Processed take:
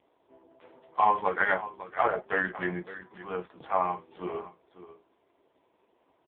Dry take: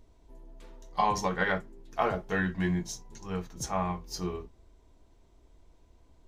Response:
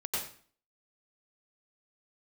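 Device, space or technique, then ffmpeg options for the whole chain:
satellite phone: -af "highpass=400,lowpass=3100,aecho=1:1:556:0.178,volume=6.5dB" -ar 8000 -c:a libopencore_amrnb -b:a 4750

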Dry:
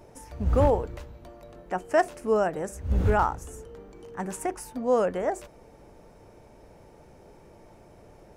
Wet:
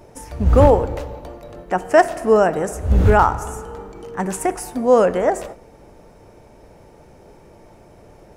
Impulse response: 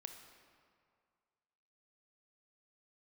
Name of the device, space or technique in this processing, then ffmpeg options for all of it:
keyed gated reverb: -filter_complex "[0:a]asplit=3[link_01][link_02][link_03];[1:a]atrim=start_sample=2205[link_04];[link_02][link_04]afir=irnorm=-1:irlink=0[link_05];[link_03]apad=whole_len=369072[link_06];[link_05][link_06]sidechaingate=range=-33dB:threshold=-47dB:ratio=16:detection=peak,volume=1dB[link_07];[link_01][link_07]amix=inputs=2:normalize=0,volume=5.5dB"

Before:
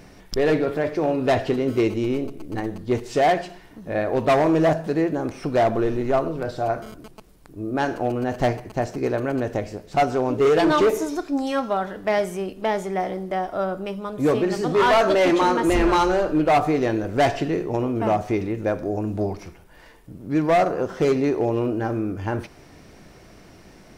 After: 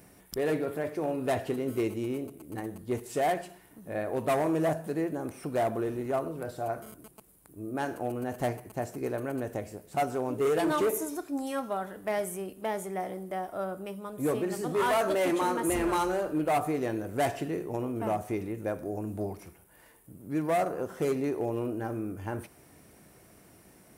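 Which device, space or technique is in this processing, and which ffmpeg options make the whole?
budget condenser microphone: -af "highpass=64,highshelf=frequency=7400:width_type=q:width=1.5:gain=13,volume=-9dB"

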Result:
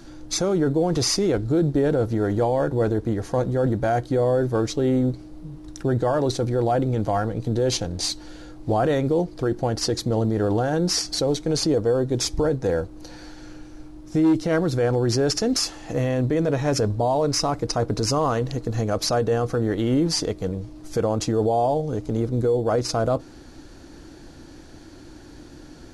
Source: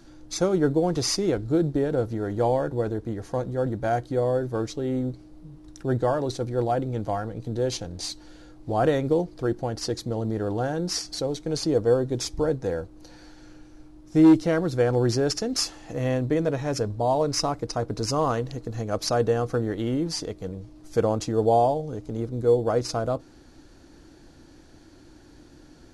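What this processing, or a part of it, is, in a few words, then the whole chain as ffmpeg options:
stacked limiters: -af "alimiter=limit=-15.5dB:level=0:latency=1:release=412,alimiter=limit=-20.5dB:level=0:latency=1:release=18,volume=7dB"

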